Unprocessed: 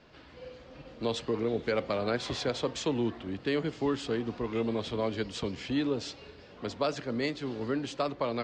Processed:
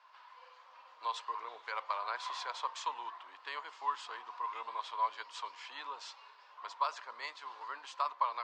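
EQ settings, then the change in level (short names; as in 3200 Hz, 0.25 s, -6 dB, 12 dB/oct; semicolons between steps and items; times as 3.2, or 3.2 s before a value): ladder high-pass 950 Hz, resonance 80%; +4.5 dB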